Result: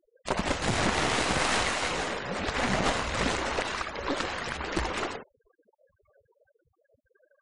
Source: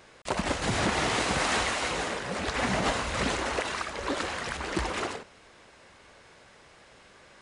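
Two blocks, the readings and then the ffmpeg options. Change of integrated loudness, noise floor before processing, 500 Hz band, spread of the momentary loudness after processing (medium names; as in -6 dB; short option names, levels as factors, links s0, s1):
+0.5 dB, -55 dBFS, 0.0 dB, 7 LU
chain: -af "aeval=exprs='0.168*(cos(1*acos(clip(val(0)/0.168,-1,1)))-cos(1*PI/2))+0.0668*(cos(2*acos(clip(val(0)/0.168,-1,1)))-cos(2*PI/2))':c=same,afftfilt=real='re*gte(hypot(re,im),0.00794)':imag='im*gte(hypot(re,im),0.00794)':win_size=1024:overlap=0.75"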